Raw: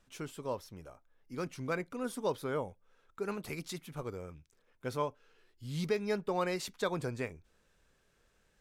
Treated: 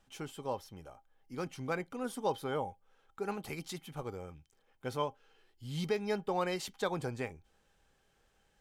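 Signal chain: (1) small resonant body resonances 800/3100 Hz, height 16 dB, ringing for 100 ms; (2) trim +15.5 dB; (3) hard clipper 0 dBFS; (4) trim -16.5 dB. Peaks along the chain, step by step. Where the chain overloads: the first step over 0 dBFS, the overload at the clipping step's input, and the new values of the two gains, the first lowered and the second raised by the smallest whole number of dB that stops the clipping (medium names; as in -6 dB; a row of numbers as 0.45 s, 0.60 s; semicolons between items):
-19.0 dBFS, -3.5 dBFS, -3.5 dBFS, -20.0 dBFS; nothing clips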